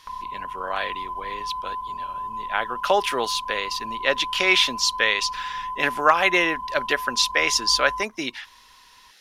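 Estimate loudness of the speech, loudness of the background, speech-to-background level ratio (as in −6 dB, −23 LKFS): −22.0 LKFS, −32.0 LKFS, 10.0 dB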